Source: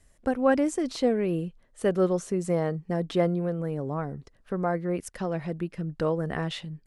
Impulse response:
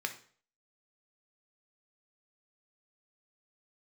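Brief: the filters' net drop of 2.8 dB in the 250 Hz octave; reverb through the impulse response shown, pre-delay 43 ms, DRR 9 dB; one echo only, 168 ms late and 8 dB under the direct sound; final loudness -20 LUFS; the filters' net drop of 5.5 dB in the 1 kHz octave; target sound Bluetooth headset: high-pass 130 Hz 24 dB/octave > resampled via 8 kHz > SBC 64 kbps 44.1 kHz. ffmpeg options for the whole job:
-filter_complex "[0:a]equalizer=f=250:t=o:g=-3.5,equalizer=f=1000:t=o:g=-8,aecho=1:1:168:0.398,asplit=2[s0][s1];[1:a]atrim=start_sample=2205,adelay=43[s2];[s1][s2]afir=irnorm=-1:irlink=0,volume=0.251[s3];[s0][s3]amix=inputs=2:normalize=0,highpass=f=130:w=0.5412,highpass=f=130:w=1.3066,aresample=8000,aresample=44100,volume=3.16" -ar 44100 -c:a sbc -b:a 64k

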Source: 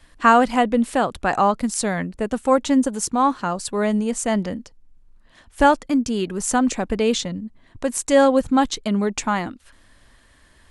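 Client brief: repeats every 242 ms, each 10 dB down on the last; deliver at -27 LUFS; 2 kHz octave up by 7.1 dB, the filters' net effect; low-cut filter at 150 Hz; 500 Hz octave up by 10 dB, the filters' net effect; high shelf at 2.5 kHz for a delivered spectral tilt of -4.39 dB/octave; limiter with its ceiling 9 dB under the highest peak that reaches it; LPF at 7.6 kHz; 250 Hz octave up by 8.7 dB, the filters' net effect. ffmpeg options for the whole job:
-af "highpass=150,lowpass=7600,equalizer=f=250:t=o:g=8,equalizer=f=500:t=o:g=9,equalizer=f=2000:t=o:g=5,highshelf=f=2500:g=8.5,alimiter=limit=0.708:level=0:latency=1,aecho=1:1:242|484|726|968:0.316|0.101|0.0324|0.0104,volume=0.224"

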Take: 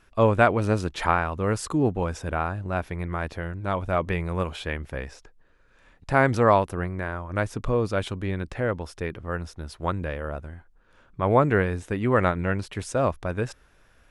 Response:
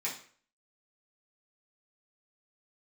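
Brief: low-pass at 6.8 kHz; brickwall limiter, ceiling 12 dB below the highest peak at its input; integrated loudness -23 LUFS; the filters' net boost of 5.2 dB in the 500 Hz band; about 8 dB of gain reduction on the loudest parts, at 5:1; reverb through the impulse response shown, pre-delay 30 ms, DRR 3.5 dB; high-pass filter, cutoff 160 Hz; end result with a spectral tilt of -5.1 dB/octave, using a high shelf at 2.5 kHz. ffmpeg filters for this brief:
-filter_complex "[0:a]highpass=160,lowpass=6800,equalizer=f=500:t=o:g=6,highshelf=f=2500:g=5.5,acompressor=threshold=0.126:ratio=5,alimiter=limit=0.133:level=0:latency=1,asplit=2[s0][s1];[1:a]atrim=start_sample=2205,adelay=30[s2];[s1][s2]afir=irnorm=-1:irlink=0,volume=0.422[s3];[s0][s3]amix=inputs=2:normalize=0,volume=2.11"

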